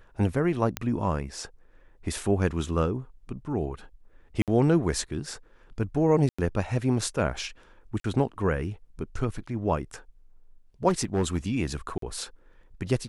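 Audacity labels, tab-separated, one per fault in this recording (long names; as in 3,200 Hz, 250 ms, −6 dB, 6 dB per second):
0.770000	0.770000	click −11 dBFS
4.420000	4.480000	drop-out 57 ms
6.290000	6.380000	drop-out 95 ms
8.000000	8.040000	drop-out 43 ms
10.880000	11.380000	clipping −20 dBFS
11.980000	12.020000	drop-out 43 ms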